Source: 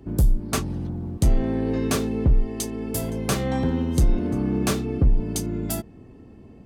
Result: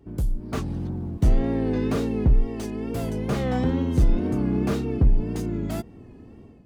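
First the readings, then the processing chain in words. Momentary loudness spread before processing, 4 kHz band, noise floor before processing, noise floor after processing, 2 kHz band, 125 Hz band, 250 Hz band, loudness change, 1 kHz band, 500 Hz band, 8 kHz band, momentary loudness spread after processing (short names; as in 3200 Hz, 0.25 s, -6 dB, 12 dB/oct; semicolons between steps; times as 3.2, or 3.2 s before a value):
7 LU, -7.5 dB, -47 dBFS, -47 dBFS, -3.5 dB, -0.5 dB, 0.0 dB, -0.5 dB, -1.5 dB, 0.0 dB, -14.0 dB, 8 LU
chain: AGC gain up to 8.5 dB; wow and flutter 75 cents; slew limiter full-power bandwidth 130 Hz; gain -7.5 dB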